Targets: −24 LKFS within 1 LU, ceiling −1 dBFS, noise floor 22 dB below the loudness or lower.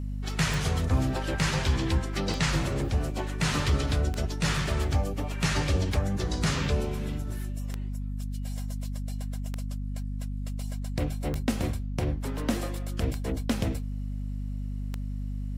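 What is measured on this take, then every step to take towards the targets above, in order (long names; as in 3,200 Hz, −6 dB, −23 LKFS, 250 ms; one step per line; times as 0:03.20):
number of clicks 9; mains hum 50 Hz; hum harmonics up to 250 Hz; level of the hum −30 dBFS; integrated loudness −30.0 LKFS; sample peak −13.5 dBFS; target loudness −24.0 LKFS
→ click removal
hum removal 50 Hz, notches 5
level +6 dB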